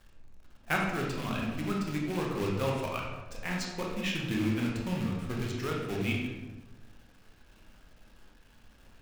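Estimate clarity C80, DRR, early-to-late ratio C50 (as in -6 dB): 4.5 dB, -2.0 dB, 2.0 dB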